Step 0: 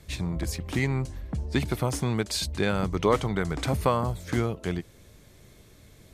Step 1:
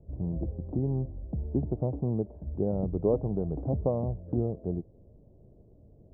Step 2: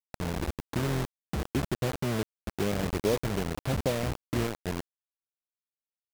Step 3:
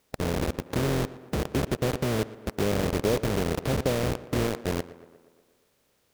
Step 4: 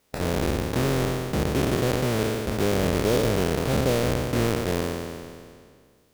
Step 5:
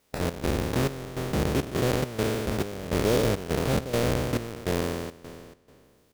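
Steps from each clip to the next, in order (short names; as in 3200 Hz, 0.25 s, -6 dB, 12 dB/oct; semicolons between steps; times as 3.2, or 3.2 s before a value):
steep low-pass 710 Hz 36 dB/oct; gain -2 dB
bit-crush 5-bit; gain -1.5 dB
per-bin compression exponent 0.6; tape echo 0.118 s, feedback 65%, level -15.5 dB, low-pass 2700 Hz
spectral trails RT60 2.00 s
step gate "xx.xxx..xxx." 103 bpm -12 dB; gain -1 dB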